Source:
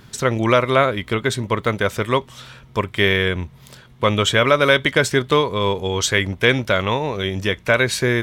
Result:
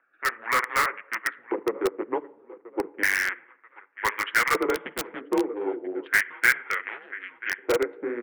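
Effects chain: local Wiener filter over 41 samples; 6.64–7.51 s: peaking EQ 960 Hz -10 dB 1.6 oct; flange 1.8 Hz, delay 4.6 ms, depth 7.5 ms, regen -15%; tilt EQ +2 dB/octave; on a send: feedback delay 985 ms, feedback 34%, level -19 dB; on the sum: LFO band-pass square 0.33 Hz 500–1800 Hz; simulated room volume 2100 m³, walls furnished, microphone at 0.54 m; mistuned SSB -110 Hz 470–2500 Hz; harmonic-percussive split percussive +4 dB; in parallel at -5 dB: integer overflow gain 18.5 dB; 4.75–5.21 s: on the sum: spectrum-flattening compressor 2:1

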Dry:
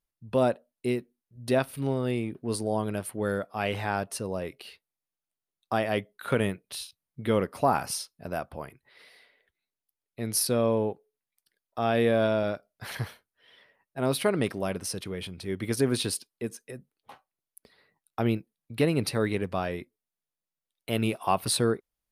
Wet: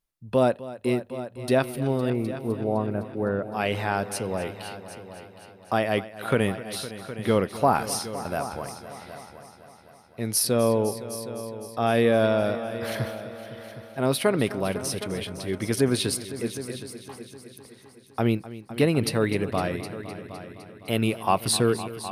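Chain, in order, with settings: 2.10–3.53 s: Bessel low-pass 1.3 kHz, order 8; multi-head delay 255 ms, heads all three, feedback 45%, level -16.5 dB; trim +3 dB

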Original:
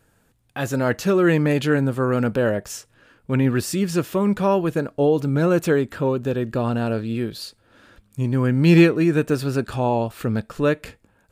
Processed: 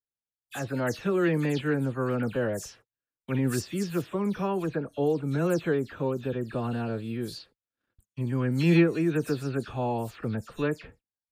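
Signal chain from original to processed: delay that grows with frequency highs early, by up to 122 ms; gate -47 dBFS, range -38 dB; trim -7.5 dB

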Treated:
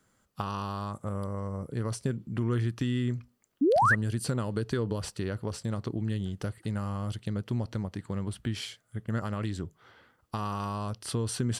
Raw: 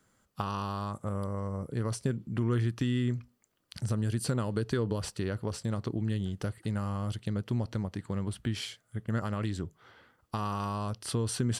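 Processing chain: painted sound rise, 3.61–3.95 s, 250–2000 Hz -22 dBFS

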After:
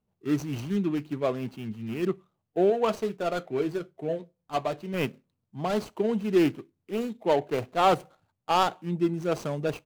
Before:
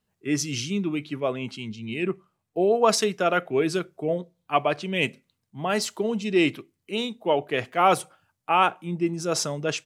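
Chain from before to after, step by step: median filter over 25 samples; 2.70–4.94 s: flange 1.6 Hz, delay 7.3 ms, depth 1.6 ms, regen -64%

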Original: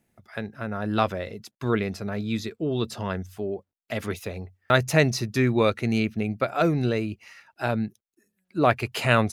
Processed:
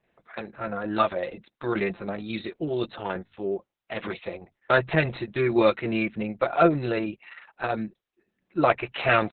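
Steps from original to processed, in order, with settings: tracing distortion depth 0.023 ms; tone controls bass -11 dB, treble -10 dB; comb 5.8 ms, depth 62%; harmonic-percussive split harmonic +4 dB; Opus 6 kbps 48 kHz

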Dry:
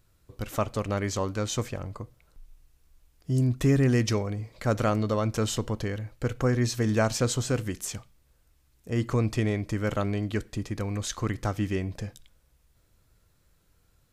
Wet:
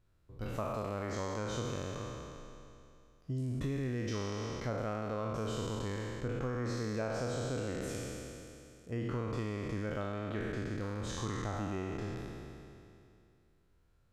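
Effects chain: spectral sustain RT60 2.59 s; low-pass 2.3 kHz 6 dB/octave; compression 5:1, threshold -24 dBFS, peak gain reduction 8 dB; trim -8.5 dB

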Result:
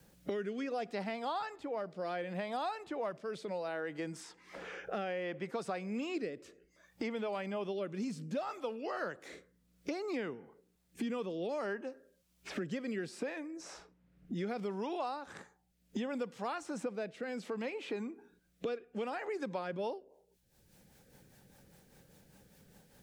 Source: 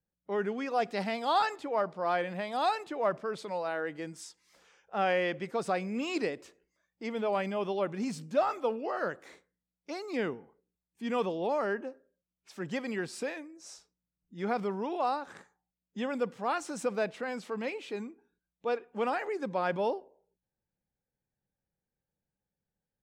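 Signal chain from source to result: in parallel at +2 dB: compression, threshold -43 dBFS, peak gain reduction 19.5 dB; on the sum: rotary cabinet horn 0.65 Hz, later 5 Hz, at 19.29 s; three bands compressed up and down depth 100%; trim -6.5 dB

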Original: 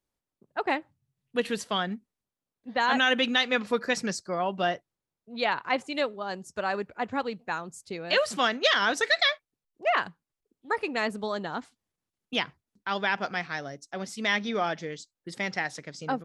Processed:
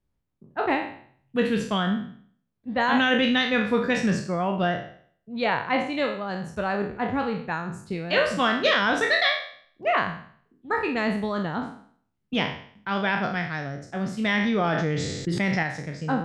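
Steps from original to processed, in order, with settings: spectral sustain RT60 0.55 s; tone controls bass +13 dB, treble -9 dB; 14.34–15.63 s: level flattener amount 70%

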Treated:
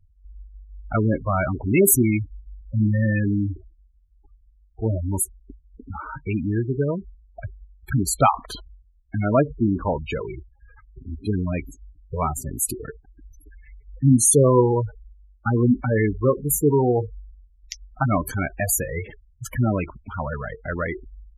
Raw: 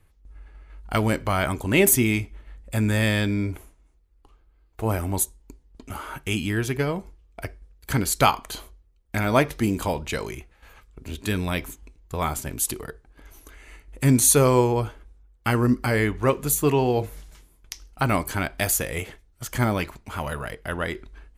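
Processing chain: spectral gate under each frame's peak -10 dB strong; trim +3 dB

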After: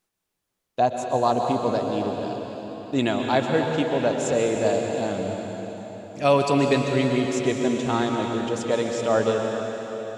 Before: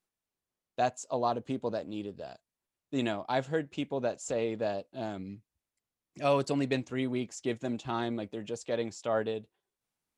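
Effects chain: time-frequency box 0.79–1.16 s, 1.1–9.1 kHz -7 dB; plate-style reverb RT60 4.1 s, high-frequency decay 0.95×, pre-delay 110 ms, DRR 1.5 dB; trim +8 dB

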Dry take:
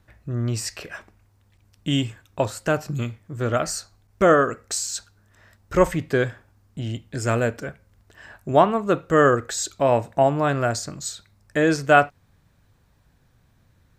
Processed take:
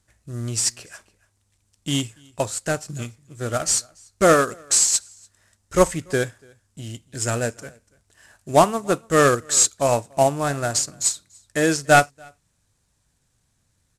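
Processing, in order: CVSD coder 64 kbps; peaking EQ 7.8 kHz +14 dB 1.5 oct; on a send: delay 289 ms -20.5 dB; on the sum: upward expansion 1.5:1, over -35 dBFS; trim +2 dB

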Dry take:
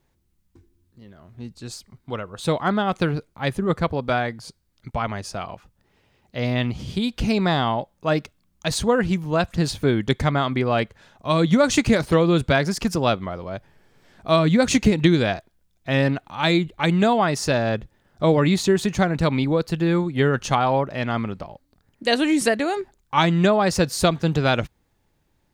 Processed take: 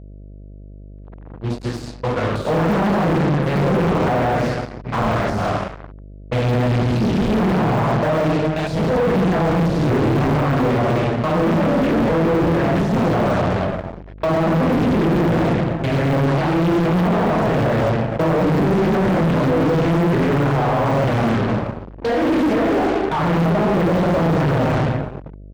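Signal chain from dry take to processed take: time reversed locally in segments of 107 ms; low-pass that closes with the level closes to 2.1 kHz, closed at -16 dBFS; on a send: delay 275 ms -21 dB; on the sum: simulated room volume 480 m³, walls mixed, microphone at 4.9 m; fuzz box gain 18 dB, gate -27 dBFS; level-controlled noise filter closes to 1.8 kHz, open at -18.5 dBFS; de-esser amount 60%; treble shelf 3.6 kHz -9 dB; mains buzz 50 Hz, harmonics 13, -33 dBFS -9 dB/octave; bass shelf 71 Hz -8.5 dB; loudspeaker Doppler distortion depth 0.51 ms

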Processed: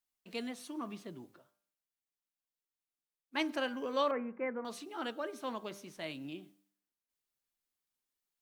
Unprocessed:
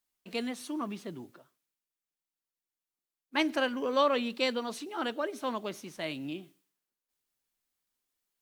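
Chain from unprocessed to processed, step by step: 4.11–4.65 s: Chebyshev low-pass 2.2 kHz, order 6; de-hum 99.33 Hz, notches 16; trim -5.5 dB

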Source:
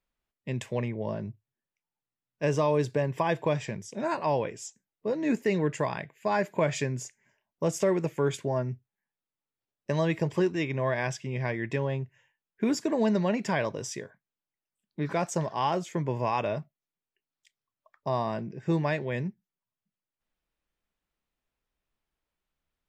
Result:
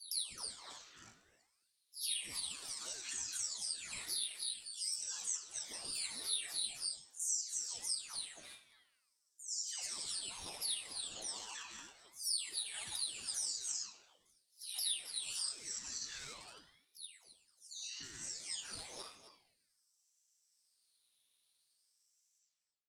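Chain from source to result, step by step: delay that grows with frequency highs early, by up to 499 ms; delay 264 ms -12.5 dB; in parallel at -4.5 dB: overload inside the chain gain 28.5 dB; on the sum: tilt EQ +4.5 dB/octave; peak limiter -23.5 dBFS, peak gain reduction 11 dB; band-pass filter 6.7 kHz, Q 10; compression 3:1, threshold -53 dBFS, peak gain reduction 15.5 dB; on a send at -6.5 dB: reverberation RT60 0.85 s, pre-delay 3 ms; on the sum: ring modulator with a swept carrier 1.9 kHz, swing 60%, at 0.47 Hz; trim +16 dB

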